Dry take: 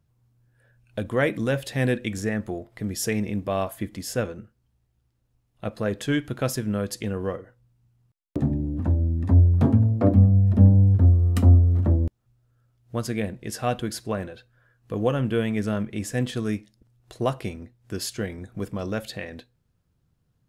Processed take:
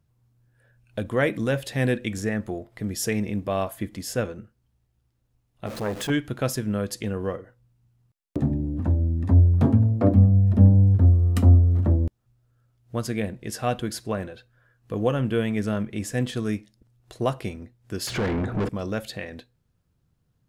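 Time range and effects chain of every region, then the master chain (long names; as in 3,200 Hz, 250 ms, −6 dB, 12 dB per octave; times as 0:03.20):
0:05.66–0:06.10: converter with a step at zero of −31.5 dBFS + saturating transformer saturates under 700 Hz
0:18.07–0:18.69: spectral tilt −3.5 dB per octave + downward compressor 2 to 1, threshold −30 dBFS + mid-hump overdrive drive 34 dB, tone 2,200 Hz, clips at −17.5 dBFS
whole clip: no processing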